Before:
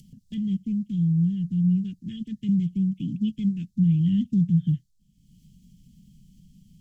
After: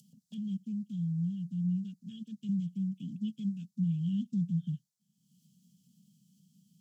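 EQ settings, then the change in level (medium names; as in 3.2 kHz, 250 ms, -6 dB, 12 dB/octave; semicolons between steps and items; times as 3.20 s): high-pass 180 Hz 24 dB/octave; static phaser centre 820 Hz, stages 4; -3.0 dB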